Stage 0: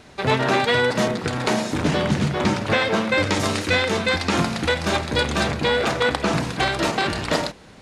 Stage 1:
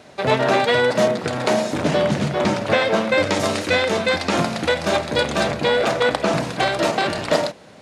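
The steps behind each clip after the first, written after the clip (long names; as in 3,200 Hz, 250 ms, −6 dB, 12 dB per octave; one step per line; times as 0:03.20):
high-pass filter 110 Hz 12 dB per octave
parametric band 610 Hz +7.5 dB 0.51 octaves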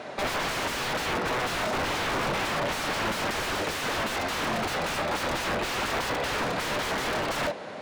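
wrap-around overflow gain 20.5 dB
mid-hump overdrive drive 18 dB, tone 1,400 Hz, clips at −20.5 dBFS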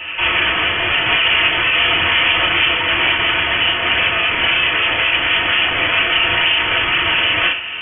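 feedback delay network reverb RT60 0.41 s, low-frequency decay 0.75×, high-frequency decay 0.8×, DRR −5.5 dB
voice inversion scrambler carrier 3,300 Hz
level +6.5 dB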